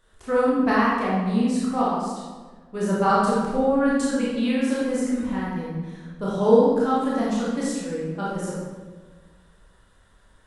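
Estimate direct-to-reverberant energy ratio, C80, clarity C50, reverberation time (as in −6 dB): −7.5 dB, 1.5 dB, −2.0 dB, 1.4 s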